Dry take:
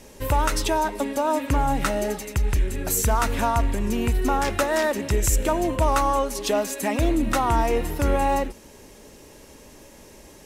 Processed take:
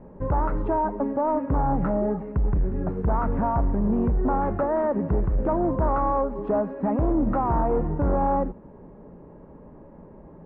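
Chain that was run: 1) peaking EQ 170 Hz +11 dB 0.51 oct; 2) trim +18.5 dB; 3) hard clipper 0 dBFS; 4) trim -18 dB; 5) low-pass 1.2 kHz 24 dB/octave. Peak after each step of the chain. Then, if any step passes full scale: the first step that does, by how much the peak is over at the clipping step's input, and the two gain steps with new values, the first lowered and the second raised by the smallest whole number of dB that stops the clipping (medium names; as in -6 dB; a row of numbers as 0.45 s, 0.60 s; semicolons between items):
-9.0 dBFS, +9.5 dBFS, 0.0 dBFS, -18.0 dBFS, -16.0 dBFS; step 2, 9.5 dB; step 2 +8.5 dB, step 4 -8 dB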